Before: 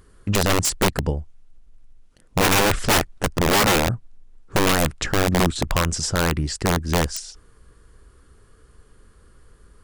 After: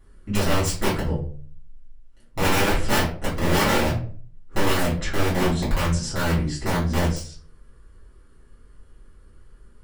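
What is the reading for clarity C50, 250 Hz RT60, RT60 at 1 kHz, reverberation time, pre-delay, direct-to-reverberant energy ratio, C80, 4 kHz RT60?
6.5 dB, 0.55 s, 0.40 s, 0.45 s, 4 ms, -11.0 dB, 12.0 dB, 0.30 s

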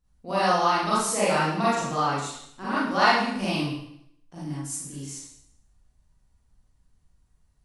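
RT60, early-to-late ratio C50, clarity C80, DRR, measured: 0.70 s, -3.5 dB, 2.0 dB, -10.0 dB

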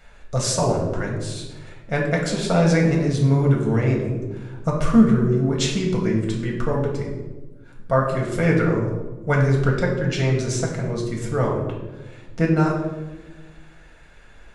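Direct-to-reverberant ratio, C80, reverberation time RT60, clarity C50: -1.5 dB, 7.0 dB, 1.2 s, 4.0 dB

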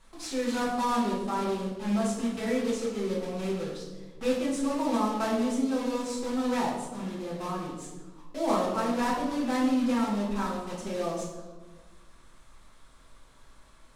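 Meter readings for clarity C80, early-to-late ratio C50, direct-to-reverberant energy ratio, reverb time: 5.5 dB, 2.5 dB, -7.0 dB, 1.3 s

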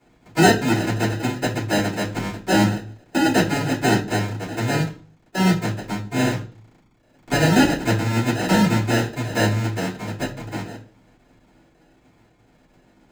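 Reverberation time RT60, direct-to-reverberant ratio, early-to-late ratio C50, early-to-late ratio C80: 0.40 s, -12.5 dB, 11.5 dB, 17.0 dB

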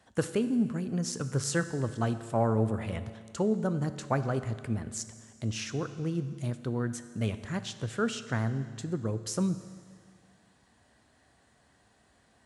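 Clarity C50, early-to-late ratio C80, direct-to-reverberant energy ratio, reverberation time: 12.5 dB, 13.5 dB, 11.0 dB, 1.9 s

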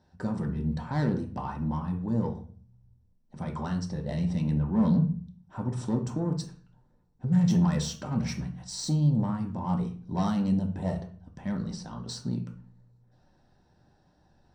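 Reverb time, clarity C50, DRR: 0.45 s, 10.0 dB, 2.0 dB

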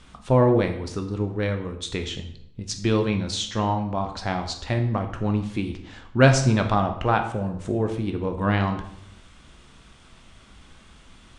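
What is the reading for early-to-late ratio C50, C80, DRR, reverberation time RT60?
9.5 dB, 12.0 dB, 5.0 dB, 0.70 s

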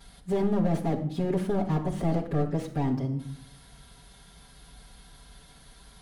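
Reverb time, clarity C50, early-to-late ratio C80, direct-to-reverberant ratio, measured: 0.65 s, 9.5 dB, 13.5 dB, -8.5 dB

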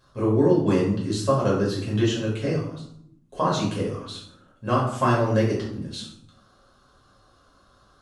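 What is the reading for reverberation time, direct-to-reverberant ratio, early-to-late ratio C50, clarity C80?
0.70 s, -5.5 dB, 3.5 dB, 7.5 dB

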